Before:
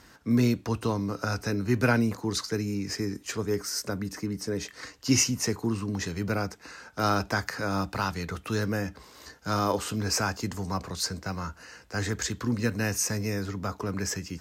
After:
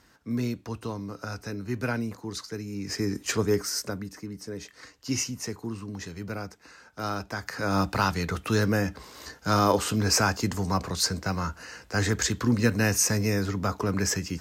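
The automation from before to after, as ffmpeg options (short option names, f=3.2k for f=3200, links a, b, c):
-af "volume=16.5dB,afade=t=in:st=2.7:d=0.61:silence=0.251189,afade=t=out:st=3.31:d=0.81:silence=0.251189,afade=t=in:st=7.4:d=0.41:silence=0.298538"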